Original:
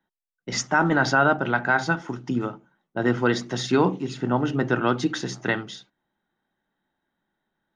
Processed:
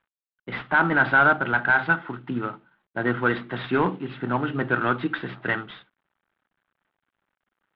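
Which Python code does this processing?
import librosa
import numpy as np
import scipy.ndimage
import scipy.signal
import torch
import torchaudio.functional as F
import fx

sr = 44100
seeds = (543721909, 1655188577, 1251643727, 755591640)

y = fx.cvsd(x, sr, bps=32000)
y = scipy.signal.sosfilt(scipy.signal.butter(8, 3600.0, 'lowpass', fs=sr, output='sos'), y)
y = fx.peak_eq(y, sr, hz=1400.0, db=8.5, octaves=1.1)
y = F.gain(torch.from_numpy(y), -3.0).numpy()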